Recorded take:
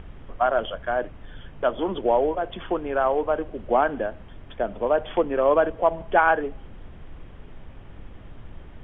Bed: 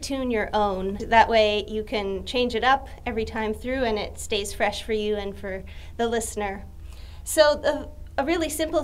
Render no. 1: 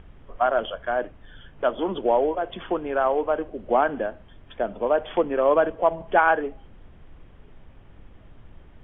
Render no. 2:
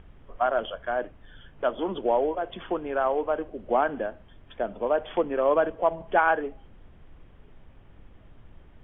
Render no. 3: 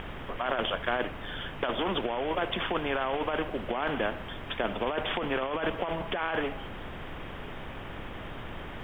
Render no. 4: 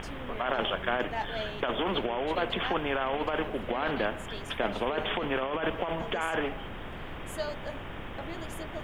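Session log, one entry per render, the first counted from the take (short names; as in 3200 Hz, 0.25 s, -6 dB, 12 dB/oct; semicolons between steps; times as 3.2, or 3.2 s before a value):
noise print and reduce 6 dB
gain -3 dB
negative-ratio compressor -28 dBFS, ratio -1; spectral compressor 2:1
add bed -18 dB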